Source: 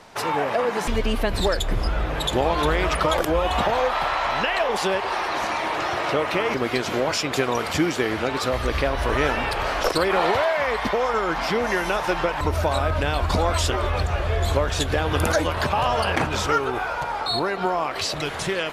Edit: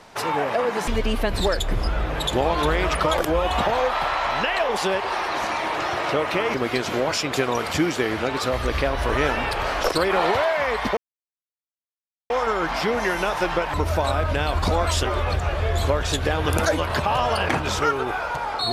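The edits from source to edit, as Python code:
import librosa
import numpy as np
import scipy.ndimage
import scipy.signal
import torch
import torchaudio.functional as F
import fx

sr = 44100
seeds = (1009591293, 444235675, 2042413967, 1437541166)

y = fx.edit(x, sr, fx.insert_silence(at_s=10.97, length_s=1.33), tone=tone)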